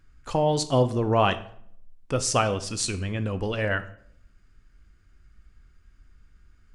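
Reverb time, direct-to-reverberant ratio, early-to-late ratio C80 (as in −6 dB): 0.65 s, 11.0 dB, 18.0 dB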